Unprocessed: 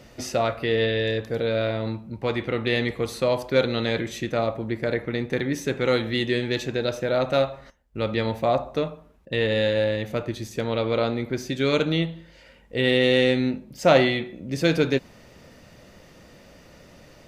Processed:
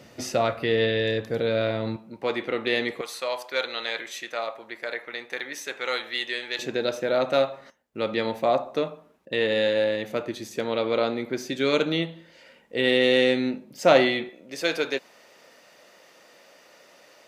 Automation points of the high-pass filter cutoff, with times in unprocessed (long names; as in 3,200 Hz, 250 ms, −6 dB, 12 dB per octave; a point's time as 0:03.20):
110 Hz
from 0:01.96 290 Hz
from 0:03.01 830 Hz
from 0:06.59 230 Hz
from 0:14.29 530 Hz